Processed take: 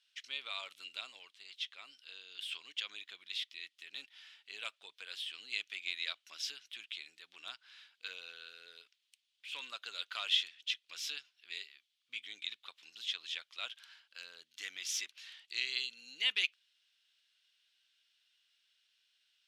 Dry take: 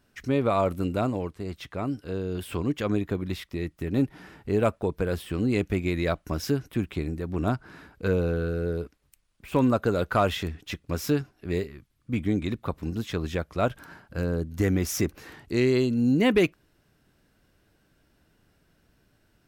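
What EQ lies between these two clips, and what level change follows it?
four-pole ladder band-pass 3,700 Hz, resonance 55%
+9.5 dB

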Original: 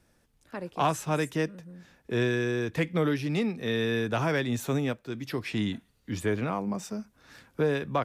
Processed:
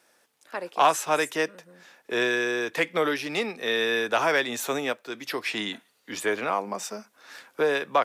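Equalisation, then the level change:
high-pass filter 530 Hz 12 dB per octave
+7.5 dB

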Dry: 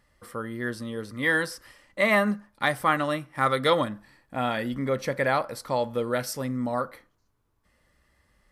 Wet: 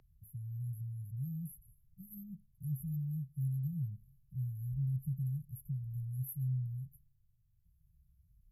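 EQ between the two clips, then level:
linear-phase brick-wall band-stop 170–11,000 Hz
three-way crossover with the lows and the highs turned down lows −14 dB, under 310 Hz, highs −20 dB, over 6,200 Hz
+15.5 dB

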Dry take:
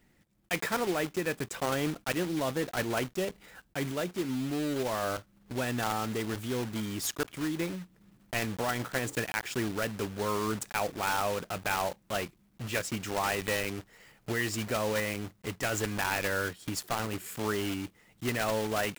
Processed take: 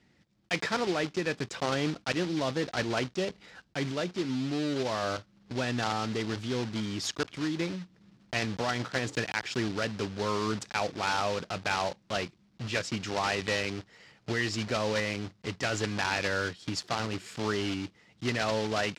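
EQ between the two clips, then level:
high-pass filter 74 Hz
low-pass with resonance 5,000 Hz, resonance Q 1.7
low-shelf EQ 200 Hz +3 dB
0.0 dB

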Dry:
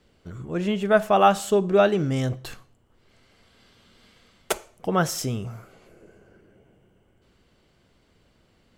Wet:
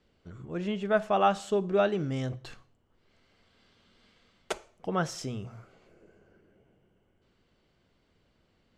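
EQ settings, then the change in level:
low-pass filter 6,400 Hz 12 dB per octave
mains-hum notches 60/120 Hz
−7.0 dB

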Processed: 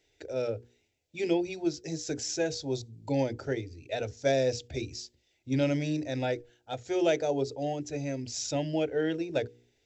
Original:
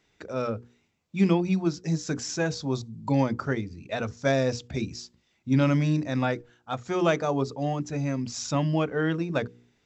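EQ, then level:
phaser with its sweep stopped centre 470 Hz, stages 4
0.0 dB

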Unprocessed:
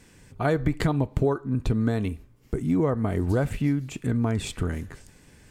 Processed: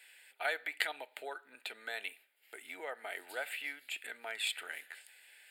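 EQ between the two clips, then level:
high-pass filter 860 Hz 24 dB per octave
phaser with its sweep stopped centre 2,600 Hz, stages 4
+3.5 dB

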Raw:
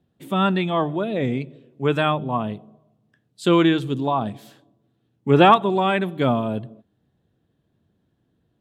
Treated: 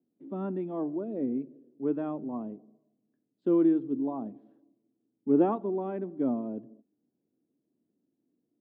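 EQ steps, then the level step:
four-pole ladder band-pass 340 Hz, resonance 40%
parametric band 270 Hz +4 dB 0.63 octaves
0.0 dB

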